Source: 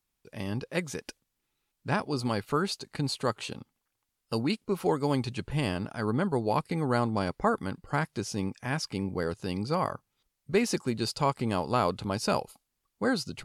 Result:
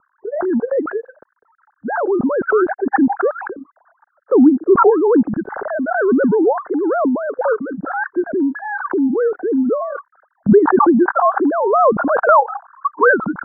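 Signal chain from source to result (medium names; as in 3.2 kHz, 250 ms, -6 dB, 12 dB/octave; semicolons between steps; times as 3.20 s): formants replaced by sine waves; steep low-pass 1.6 kHz 96 dB/octave; spectral noise reduction 8 dB; peaking EQ 1.1 kHz -13.5 dB 1.2 oct, from 10.52 s -4.5 dB, from 12.29 s +10.5 dB; loudness maximiser +17 dB; swell ahead of each attack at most 30 dB/s; trim -2 dB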